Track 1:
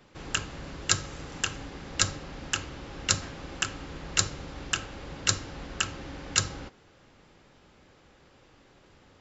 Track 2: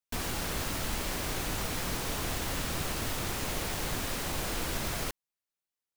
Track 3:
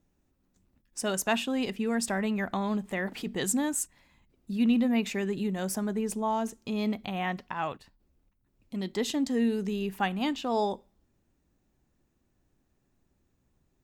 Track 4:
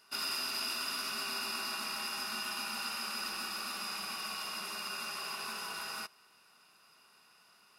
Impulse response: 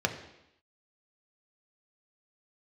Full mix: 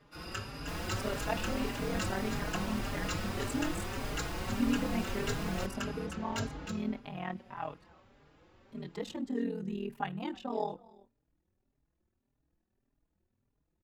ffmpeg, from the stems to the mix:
-filter_complex "[0:a]asoftclip=type=tanh:threshold=-21.5dB,volume=-1dB,asplit=2[a][b];[b]volume=-7.5dB[c];[1:a]adelay=550,volume=-0.5dB[d];[2:a]tremolo=f=40:d=1,volume=0dB,asplit=2[e][f];[f]volume=-22.5dB[g];[3:a]volume=-5dB[h];[c][g]amix=inputs=2:normalize=0,aecho=0:1:311:1[i];[a][d][e][h][i]amix=inputs=5:normalize=0,highshelf=f=3.7k:g=-11,asplit=2[j][k];[k]adelay=4.5,afreqshift=1.7[l];[j][l]amix=inputs=2:normalize=1"

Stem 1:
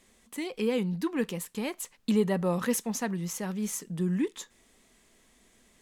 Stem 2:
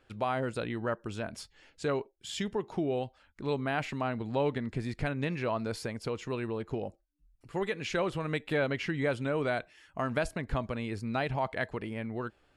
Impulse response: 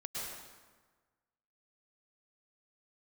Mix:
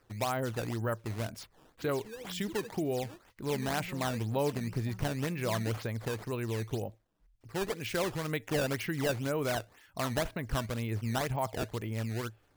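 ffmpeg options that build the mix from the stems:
-filter_complex "[0:a]highshelf=f=6.6k:t=q:w=1.5:g=-11.5,aecho=1:1:6.2:0.67,adelay=1450,volume=-19.5dB[a];[1:a]equalizer=f=110:t=o:w=0.22:g=10,volume=-1.5dB[b];[a][b]amix=inputs=2:normalize=0,acrusher=samples=12:mix=1:aa=0.000001:lfo=1:lforange=19.2:lforate=2"

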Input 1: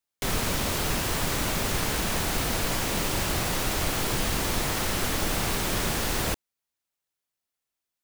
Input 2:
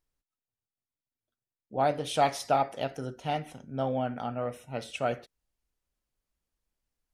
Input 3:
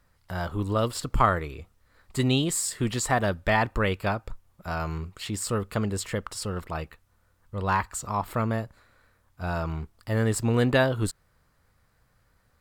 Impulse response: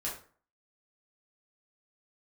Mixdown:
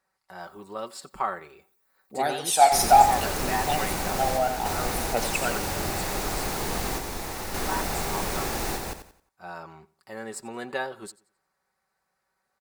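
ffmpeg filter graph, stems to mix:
-filter_complex "[0:a]adelay=2500,volume=-4.5dB,asplit=2[a][b];[b]volume=-3dB[c];[1:a]aemphasis=mode=production:type=riaa,aphaser=in_gain=1:out_gain=1:delay=1.6:decay=0.67:speed=0.63:type=triangular,adelay=400,volume=0dB,asplit=2[d][e];[e]volume=-9dB[f];[2:a]highpass=f=590:p=1,equalizer=f=14k:t=o:w=0.26:g=-5.5,aecho=1:1:5.3:0.59,volume=-8dB,asplit=3[g][h][i];[h]volume=-21dB[j];[i]apad=whole_len=464765[k];[a][k]sidechaingate=range=-33dB:threshold=-59dB:ratio=16:detection=peak[l];[c][f][j]amix=inputs=3:normalize=0,aecho=0:1:89|178|267|356|445:1|0.32|0.102|0.0328|0.0105[m];[l][d][g][m]amix=inputs=4:normalize=0,equalizer=f=125:t=o:w=0.33:g=-5,equalizer=f=400:t=o:w=0.33:g=4,equalizer=f=800:t=o:w=0.33:g=7,equalizer=f=3.15k:t=o:w=0.33:g=-6"

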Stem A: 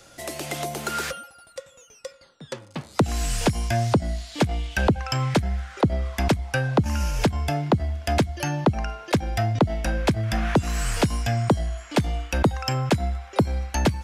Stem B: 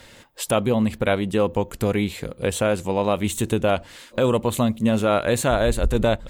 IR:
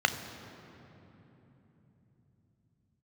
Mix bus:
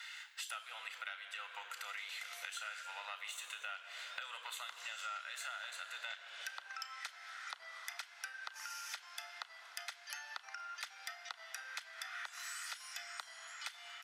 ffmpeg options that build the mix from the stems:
-filter_complex "[0:a]adelay=1700,volume=-4dB,asplit=2[a][b];[b]volume=-13.5dB[c];[1:a]asoftclip=type=tanh:threshold=-9.5dB,volume=-6dB,asplit=3[d][e][f];[e]volume=-4dB[g];[f]apad=whole_len=693793[h];[a][h]sidechaincompress=threshold=-41dB:ratio=8:attack=38:release=216[i];[2:a]atrim=start_sample=2205[j];[c][g]amix=inputs=2:normalize=0[k];[k][j]afir=irnorm=-1:irlink=0[l];[i][d][l]amix=inputs=3:normalize=0,highpass=f=1.4k:w=0.5412,highpass=f=1.4k:w=1.3066,acompressor=threshold=-43dB:ratio=6"

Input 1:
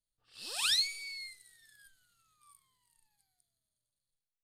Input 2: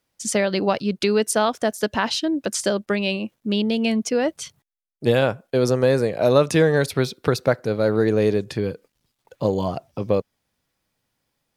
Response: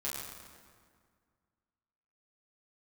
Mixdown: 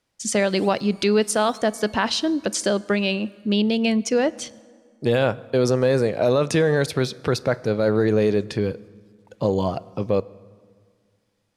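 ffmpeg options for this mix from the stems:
-filter_complex "[0:a]asoftclip=type=hard:threshold=-24.5dB,acompressor=threshold=-34dB:ratio=6,volume=-4.5dB,asplit=2[a][b];[b]volume=-6.5dB[c];[1:a]lowpass=9.6k,alimiter=limit=-10.5dB:level=0:latency=1:release=16,volume=0.5dB,asplit=3[d][e][f];[e]volume=-20.5dB[g];[f]apad=whole_len=195742[h];[a][h]sidechaincompress=threshold=-26dB:ratio=8:attack=16:release=330[i];[2:a]atrim=start_sample=2205[j];[g][j]afir=irnorm=-1:irlink=0[k];[c]aecho=0:1:772|1544|2316|3088|3860:1|0.39|0.152|0.0593|0.0231[l];[i][d][k][l]amix=inputs=4:normalize=0"

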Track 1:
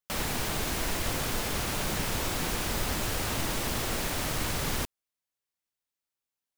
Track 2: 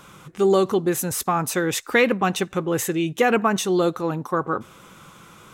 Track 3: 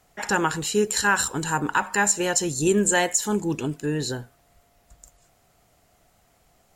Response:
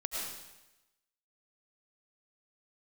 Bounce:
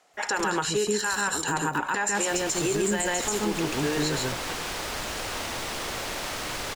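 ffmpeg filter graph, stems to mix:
-filter_complex "[0:a]adelay=2050,volume=1dB,asplit=2[a][b];[b]volume=-9.5dB[c];[1:a]acompressor=threshold=-29dB:ratio=20,acrusher=bits=3:mix=0:aa=0.5,volume=-1dB[d];[2:a]volume=2dB,asplit=2[e][f];[f]volume=-4dB[g];[a][e]amix=inputs=2:normalize=0,highpass=410,lowpass=7.6k,alimiter=limit=-13.5dB:level=0:latency=1:release=65,volume=0dB[h];[c][g]amix=inputs=2:normalize=0,aecho=0:1:137:1[i];[d][h][i]amix=inputs=3:normalize=0,alimiter=limit=-16.5dB:level=0:latency=1:release=82"

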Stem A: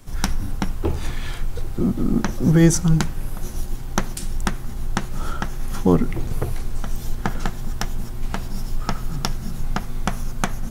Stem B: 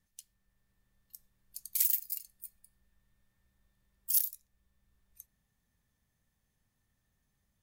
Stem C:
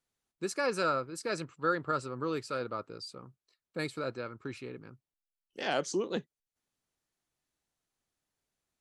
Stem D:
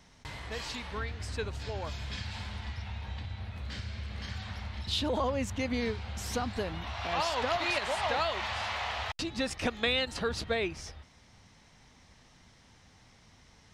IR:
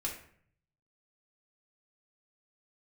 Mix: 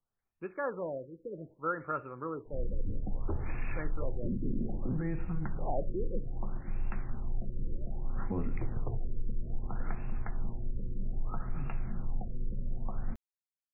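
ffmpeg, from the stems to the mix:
-filter_complex "[0:a]adelay=2450,volume=-8.5dB,asplit=2[a][b];[b]volume=-18dB[c];[1:a]flanger=delay=7:depth=6.3:regen=21:speed=1.7:shape=triangular,volume=-11dB,asplit=2[d][e];[e]volume=-16dB[f];[2:a]lowpass=1.2k,equalizer=f=270:t=o:w=3:g=-10,volume=2dB,asplit=2[g][h];[h]volume=-12dB[i];[a]acrossover=split=160[j][k];[k]acompressor=threshold=-33dB:ratio=4[l];[j][l]amix=inputs=2:normalize=0,alimiter=level_in=1.5dB:limit=-24dB:level=0:latency=1:release=62,volume=-1.5dB,volume=0dB[m];[4:a]atrim=start_sample=2205[n];[c][f][i]amix=inputs=3:normalize=0[o];[o][n]afir=irnorm=-1:irlink=0[p];[d][g][m][p]amix=inputs=4:normalize=0,aexciter=amount=4.6:drive=2.7:freq=2.9k,afftfilt=real='re*lt(b*sr/1024,540*pow(2800/540,0.5+0.5*sin(2*PI*0.62*pts/sr)))':imag='im*lt(b*sr/1024,540*pow(2800/540,0.5+0.5*sin(2*PI*0.62*pts/sr)))':win_size=1024:overlap=0.75"

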